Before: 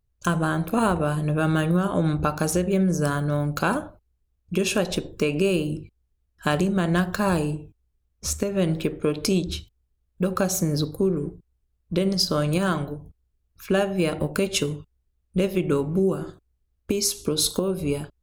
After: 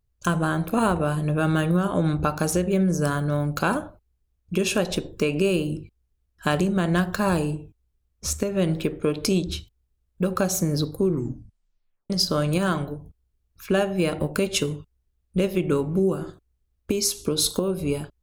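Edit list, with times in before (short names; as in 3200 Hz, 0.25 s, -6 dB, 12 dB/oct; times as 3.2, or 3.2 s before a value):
11.06 tape stop 1.04 s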